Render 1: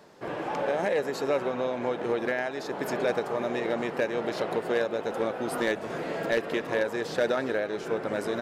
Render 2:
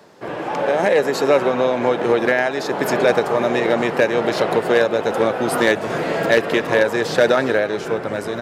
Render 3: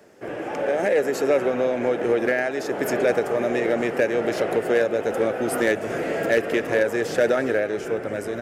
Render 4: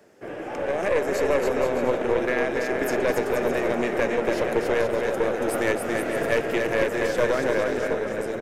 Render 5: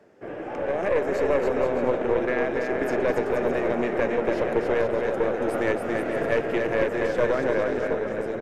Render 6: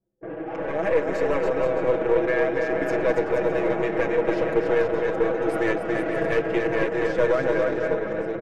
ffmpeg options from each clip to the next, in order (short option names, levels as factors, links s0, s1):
-filter_complex "[0:a]highpass=53,asubboost=boost=2.5:cutoff=130,acrossover=split=130[s0][s1];[s1]dynaudnorm=f=110:g=13:m=2[s2];[s0][s2]amix=inputs=2:normalize=0,volume=2"
-filter_complex "[0:a]equalizer=f=160:t=o:w=0.67:g=-7,equalizer=f=1000:t=o:w=0.67:g=-11,equalizer=f=4000:t=o:w=0.67:g=-11,asplit=2[s0][s1];[s1]asoftclip=type=tanh:threshold=0.1,volume=0.376[s2];[s0][s2]amix=inputs=2:normalize=0,volume=0.631"
-filter_complex "[0:a]asplit=2[s0][s1];[s1]aecho=0:1:280|476|613.2|709.2|776.5:0.631|0.398|0.251|0.158|0.1[s2];[s0][s2]amix=inputs=2:normalize=0,aeval=exprs='(tanh(3.55*val(0)+0.65)-tanh(0.65))/3.55':c=same"
-af "lowpass=f=2000:p=1"
-filter_complex "[0:a]anlmdn=1.58,aecho=1:1:6.2:0.97,asplit=2[s0][s1];[s1]asoftclip=type=hard:threshold=0.211,volume=0.251[s2];[s0][s2]amix=inputs=2:normalize=0,volume=0.668"